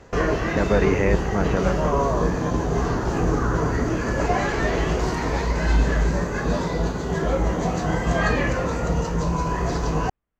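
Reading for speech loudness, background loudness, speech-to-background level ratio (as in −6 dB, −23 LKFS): −25.5 LKFS, −23.5 LKFS, −2.0 dB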